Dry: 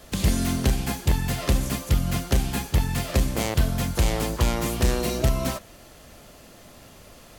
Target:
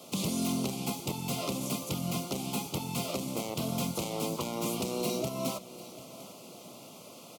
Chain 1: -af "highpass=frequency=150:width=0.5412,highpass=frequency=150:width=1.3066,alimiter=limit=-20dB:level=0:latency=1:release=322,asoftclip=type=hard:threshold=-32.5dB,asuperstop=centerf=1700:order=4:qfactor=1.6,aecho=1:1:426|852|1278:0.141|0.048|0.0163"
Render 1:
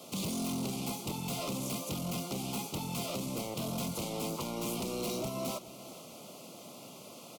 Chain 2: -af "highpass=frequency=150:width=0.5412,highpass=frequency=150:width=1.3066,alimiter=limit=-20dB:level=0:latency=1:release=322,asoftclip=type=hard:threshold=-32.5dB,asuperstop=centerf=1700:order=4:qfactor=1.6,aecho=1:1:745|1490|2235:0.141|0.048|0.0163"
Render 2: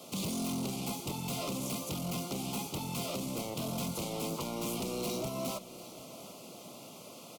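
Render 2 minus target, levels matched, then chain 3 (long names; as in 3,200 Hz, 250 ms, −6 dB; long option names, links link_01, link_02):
hard clipping: distortion +12 dB
-af "highpass=frequency=150:width=0.5412,highpass=frequency=150:width=1.3066,alimiter=limit=-20dB:level=0:latency=1:release=322,asoftclip=type=hard:threshold=-25dB,asuperstop=centerf=1700:order=4:qfactor=1.6,aecho=1:1:745|1490|2235:0.141|0.048|0.0163"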